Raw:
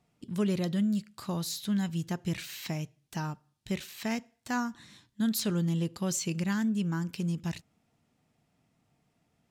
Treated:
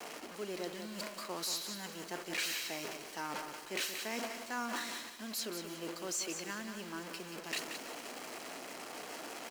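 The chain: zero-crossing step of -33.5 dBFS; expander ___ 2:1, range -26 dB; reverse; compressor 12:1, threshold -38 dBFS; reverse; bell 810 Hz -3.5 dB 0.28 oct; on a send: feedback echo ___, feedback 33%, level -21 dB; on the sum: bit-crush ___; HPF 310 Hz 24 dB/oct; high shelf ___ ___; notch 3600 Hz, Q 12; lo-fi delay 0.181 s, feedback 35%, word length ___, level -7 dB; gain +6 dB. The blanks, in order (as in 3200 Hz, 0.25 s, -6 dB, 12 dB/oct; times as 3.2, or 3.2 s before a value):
-29 dBFS, 0.307 s, 9-bit, 11000 Hz, -8 dB, 10-bit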